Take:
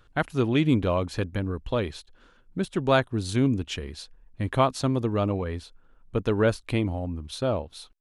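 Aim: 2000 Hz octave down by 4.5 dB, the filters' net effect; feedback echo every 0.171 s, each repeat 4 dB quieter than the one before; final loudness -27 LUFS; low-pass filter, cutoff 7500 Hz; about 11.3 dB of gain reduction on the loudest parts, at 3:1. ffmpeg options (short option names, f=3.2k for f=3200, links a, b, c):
-af "lowpass=7.5k,equalizer=f=2k:t=o:g=-6.5,acompressor=threshold=-33dB:ratio=3,aecho=1:1:171|342|513|684|855|1026|1197|1368|1539:0.631|0.398|0.25|0.158|0.0994|0.0626|0.0394|0.0249|0.0157,volume=7.5dB"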